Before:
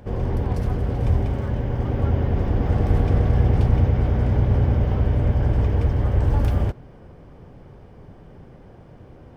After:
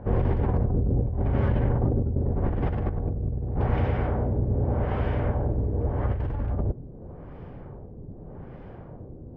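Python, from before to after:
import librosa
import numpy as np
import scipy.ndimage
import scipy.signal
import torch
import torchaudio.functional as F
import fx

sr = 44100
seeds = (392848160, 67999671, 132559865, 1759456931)

y = fx.low_shelf(x, sr, hz=330.0, db=-11.0, at=(3.58, 6.05), fade=0.02)
y = fx.over_compress(y, sr, threshold_db=-24.0, ratio=-1.0)
y = fx.filter_lfo_lowpass(y, sr, shape='sine', hz=0.84, low_hz=370.0, high_hz=2800.0, q=0.89)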